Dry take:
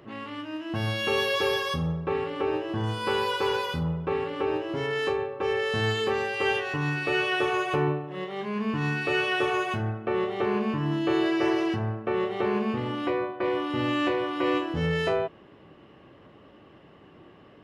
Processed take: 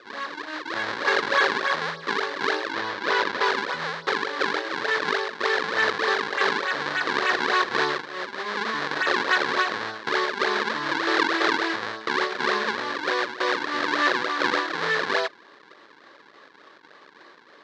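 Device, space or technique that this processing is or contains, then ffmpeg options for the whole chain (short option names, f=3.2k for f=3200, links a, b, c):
circuit-bent sampling toy: -filter_complex "[0:a]acrusher=samples=41:mix=1:aa=0.000001:lfo=1:lforange=65.6:lforate=3.4,highpass=580,equalizer=f=730:t=q:w=4:g=-5,equalizer=f=1.1k:t=q:w=4:g=4,equalizer=f=1.7k:t=q:w=4:g=9,equalizer=f=2.7k:t=q:w=4:g=-5,equalizer=f=4k:t=q:w=4:g=5,lowpass=f=4.9k:w=0.5412,lowpass=f=4.9k:w=1.3066,asettb=1/sr,asplit=3[a][b][c];[a]atrim=end=2.724[d];[b]atrim=start=2.72:end=3.45,asetpts=PTS-STARTPTS,afade=t=in:d=0.004:c=qsin,afade=t=out:st=0.726:d=0.004:c=qsin,lowpass=7k[e];[c]atrim=start=3.446[f];[d][e]acrossfade=d=0.004:c1=hsin:c2=qsin[g];[g][f]acrossfade=d=0.004:c1=qsin:c2=hsin,volume=6dB"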